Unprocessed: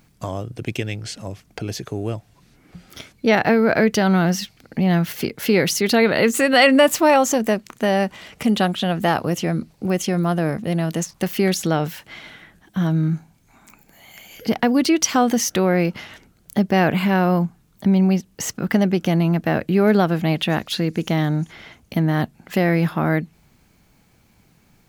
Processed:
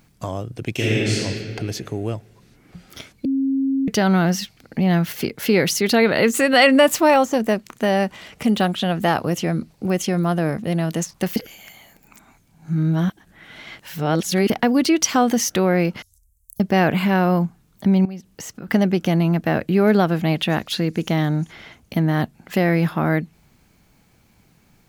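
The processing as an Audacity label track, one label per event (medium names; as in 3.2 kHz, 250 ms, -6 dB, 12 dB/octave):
0.730000	1.180000	reverb throw, RT60 2.2 s, DRR -8.5 dB
3.250000	3.880000	bleep 270 Hz -17 dBFS
7.130000	8.690000	de-esser amount 55%
11.360000	14.500000	reverse
16.020000	16.600000	inverse Chebyshev band-stop 220–2700 Hz, stop band 60 dB
18.050000	18.680000	compression 4:1, threshold -32 dBFS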